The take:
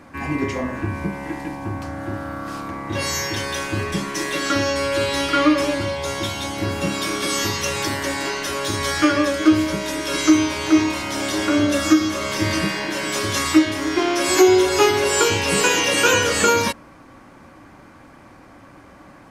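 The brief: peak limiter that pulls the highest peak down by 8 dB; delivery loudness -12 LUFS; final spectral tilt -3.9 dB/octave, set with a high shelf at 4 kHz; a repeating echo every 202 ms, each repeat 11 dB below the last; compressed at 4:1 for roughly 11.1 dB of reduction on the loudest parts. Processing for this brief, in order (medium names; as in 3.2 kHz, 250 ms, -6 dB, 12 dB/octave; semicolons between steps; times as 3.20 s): treble shelf 4 kHz +8 dB; compression 4:1, threshold -22 dBFS; peak limiter -18.5 dBFS; feedback delay 202 ms, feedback 28%, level -11 dB; trim +14 dB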